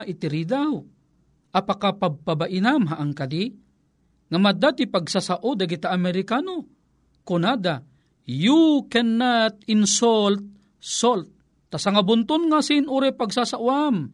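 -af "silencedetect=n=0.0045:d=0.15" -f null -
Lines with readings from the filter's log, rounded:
silence_start: 0.88
silence_end: 1.54 | silence_duration: 0.66
silence_start: 3.59
silence_end: 4.31 | silence_duration: 0.71
silence_start: 6.70
silence_end: 7.27 | silence_duration: 0.57
silence_start: 7.84
silence_end: 8.27 | silence_duration: 0.43
silence_start: 10.57
silence_end: 10.82 | silence_duration: 0.25
silence_start: 11.31
silence_end: 11.71 | silence_duration: 0.40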